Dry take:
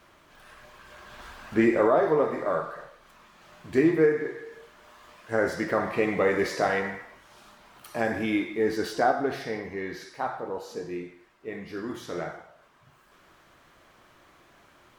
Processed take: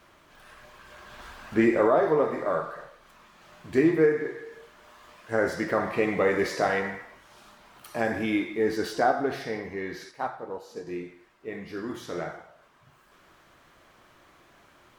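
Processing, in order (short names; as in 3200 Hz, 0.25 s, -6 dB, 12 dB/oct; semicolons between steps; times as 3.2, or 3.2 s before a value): 10.11–10.87 upward expander 1.5:1, over -38 dBFS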